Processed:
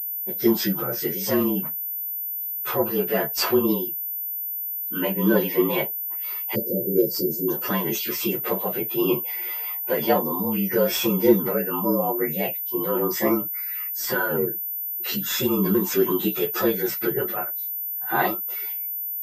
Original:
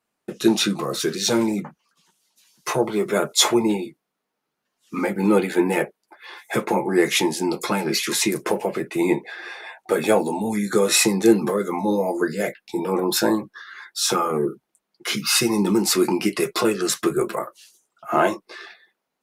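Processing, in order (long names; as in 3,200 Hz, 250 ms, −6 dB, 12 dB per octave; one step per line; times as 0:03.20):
partials spread apart or drawn together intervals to 112%
time-frequency box erased 0:06.55–0:07.48, 600–4,500 Hz
switching amplifier with a slow clock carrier 14,000 Hz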